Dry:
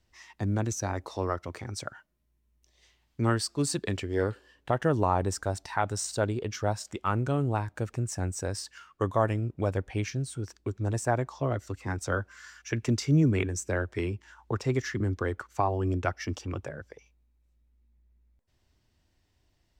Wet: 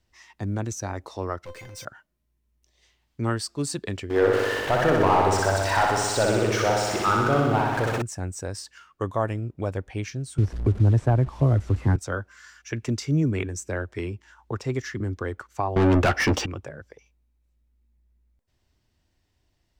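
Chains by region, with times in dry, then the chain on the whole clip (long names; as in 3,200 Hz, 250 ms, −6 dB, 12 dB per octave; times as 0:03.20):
0:01.45–0:01.85: parametric band 2,500 Hz +5 dB 1.1 octaves + leveller curve on the samples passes 5 + tuned comb filter 520 Hz, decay 0.23 s, mix 90%
0:04.10–0:08.02: converter with a step at zero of −34.5 dBFS + mid-hump overdrive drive 18 dB, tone 1,800 Hz, clips at −11.5 dBFS + flutter between parallel walls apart 10.6 metres, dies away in 1.4 s
0:10.38–0:11.96: linear delta modulator 64 kbit/s, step −41 dBFS + RIAA equalisation playback + multiband upward and downward compressor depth 70%
0:15.76–0:16.46: low-shelf EQ 240 Hz +9 dB + mid-hump overdrive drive 33 dB, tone 2,300 Hz, clips at −12 dBFS + double-tracking delay 14 ms −11.5 dB
whole clip: no processing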